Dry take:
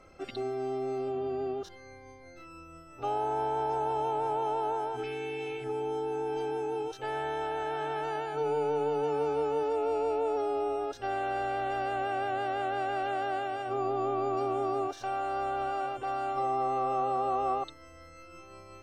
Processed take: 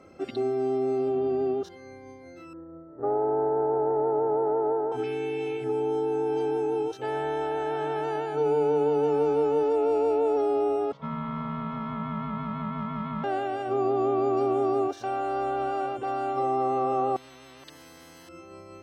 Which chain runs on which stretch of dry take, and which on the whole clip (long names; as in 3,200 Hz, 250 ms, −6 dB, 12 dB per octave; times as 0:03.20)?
0:02.53–0:04.92: running median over 25 samples + Chebyshev low-pass with heavy ripple 1,900 Hz, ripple 3 dB + parametric band 470 Hz +4.5 dB 1.2 octaves
0:10.92–0:13.24: ring modulation 550 Hz + drawn EQ curve 190 Hz 0 dB, 300 Hz −12 dB, 430 Hz −1 dB, 1,300 Hz −1 dB, 1,900 Hz −6 dB, 3,400 Hz −5 dB, 10,000 Hz −29 dB
0:17.16–0:18.29: downward compressor 2.5 to 1, threshold −47 dBFS + every bin compressed towards the loudest bin 10 to 1
whole clip: high-pass filter 70 Hz; parametric band 260 Hz +9 dB 2.2 octaves